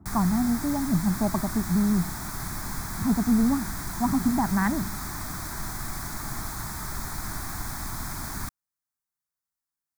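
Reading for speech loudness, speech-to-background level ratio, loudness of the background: -26.0 LUFS, 7.5 dB, -33.5 LUFS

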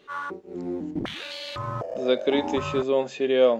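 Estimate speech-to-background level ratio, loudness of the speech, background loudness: 7.5 dB, -25.0 LUFS, -32.5 LUFS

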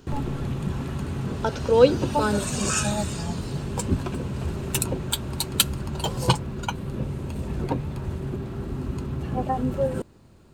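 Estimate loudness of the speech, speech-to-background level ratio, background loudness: -23.5 LUFS, 4.5 dB, -28.0 LUFS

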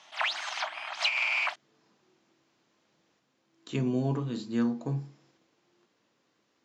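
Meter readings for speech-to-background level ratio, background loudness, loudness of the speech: -2.0 dB, -29.5 LUFS, -31.5 LUFS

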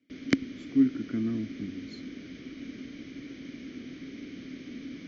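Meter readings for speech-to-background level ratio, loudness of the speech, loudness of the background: 12.5 dB, -30.0 LUFS, -42.5 LUFS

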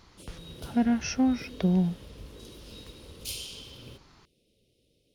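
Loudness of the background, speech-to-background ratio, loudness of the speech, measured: -43.5 LUFS, 16.5 dB, -27.0 LUFS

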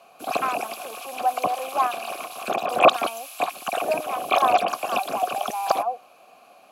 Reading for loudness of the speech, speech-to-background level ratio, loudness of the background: -28.5 LUFS, -2.5 dB, -26.0 LUFS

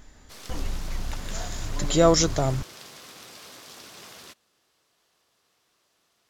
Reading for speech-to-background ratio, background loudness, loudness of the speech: 19.0 dB, -43.5 LUFS, -24.5 LUFS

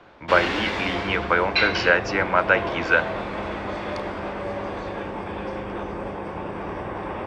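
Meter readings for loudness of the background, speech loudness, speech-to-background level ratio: -29.5 LUFS, -21.5 LUFS, 8.0 dB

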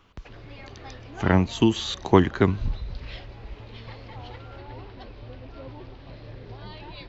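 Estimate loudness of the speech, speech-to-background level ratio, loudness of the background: -23.0 LUFS, 20.0 dB, -43.0 LUFS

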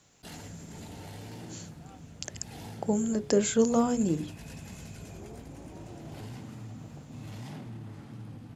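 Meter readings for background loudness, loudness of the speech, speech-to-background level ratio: -45.0 LUFS, -29.0 LUFS, 16.0 dB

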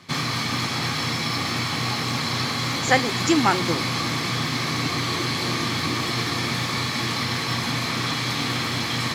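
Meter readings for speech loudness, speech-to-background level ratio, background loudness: -23.0 LUFS, 1.0 dB, -24.0 LUFS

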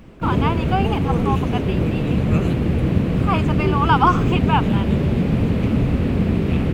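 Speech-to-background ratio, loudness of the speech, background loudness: -4.0 dB, -23.5 LUFS, -19.5 LUFS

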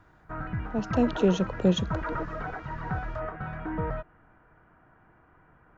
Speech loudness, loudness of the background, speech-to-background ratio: -27.0 LUFS, -34.5 LUFS, 7.5 dB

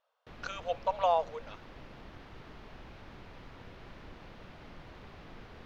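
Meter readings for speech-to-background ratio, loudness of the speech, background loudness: 19.0 dB, -32.5 LUFS, -51.5 LUFS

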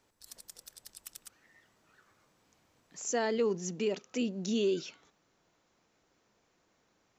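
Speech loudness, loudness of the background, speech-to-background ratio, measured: -33.0 LUFS, -50.0 LUFS, 17.0 dB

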